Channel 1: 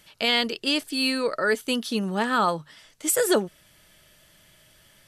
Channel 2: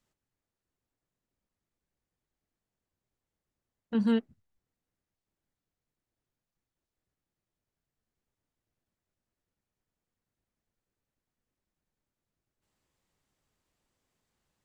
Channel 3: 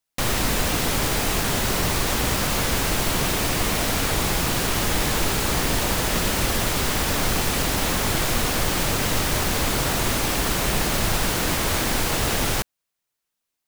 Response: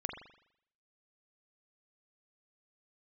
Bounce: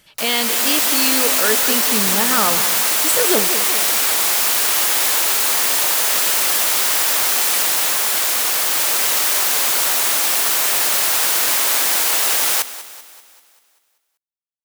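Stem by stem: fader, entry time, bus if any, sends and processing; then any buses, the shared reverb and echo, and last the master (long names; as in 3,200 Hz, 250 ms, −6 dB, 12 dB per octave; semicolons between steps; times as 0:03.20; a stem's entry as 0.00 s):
+2.0 dB, 0.00 s, no send, echo send −11 dB, no processing
muted
−3.5 dB, 0.00 s, no send, echo send −15.5 dB, automatic gain control gain up to 9.5 dB; Bessel high-pass filter 810 Hz, order 2; high-shelf EQ 6,800 Hz +9.5 dB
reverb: not used
echo: repeating echo 194 ms, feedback 53%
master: no processing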